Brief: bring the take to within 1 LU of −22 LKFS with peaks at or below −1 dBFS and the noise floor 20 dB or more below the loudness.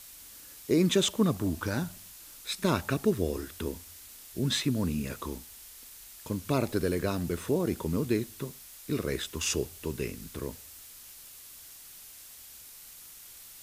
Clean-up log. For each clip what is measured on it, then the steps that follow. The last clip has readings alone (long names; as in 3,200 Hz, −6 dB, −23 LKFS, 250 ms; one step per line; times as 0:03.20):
background noise floor −50 dBFS; target noise floor −51 dBFS; integrated loudness −31.0 LKFS; sample peak −12.5 dBFS; target loudness −22.0 LKFS
→ broadband denoise 6 dB, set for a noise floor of −50 dBFS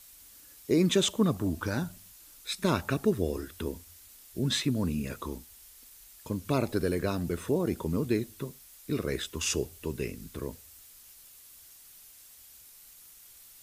background noise floor −54 dBFS; integrated loudness −31.0 LKFS; sample peak −12.5 dBFS; target loudness −22.0 LKFS
→ level +9 dB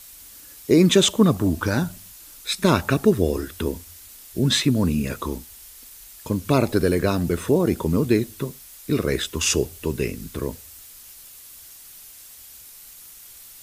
integrated loudness −22.0 LKFS; sample peak −3.5 dBFS; background noise floor −45 dBFS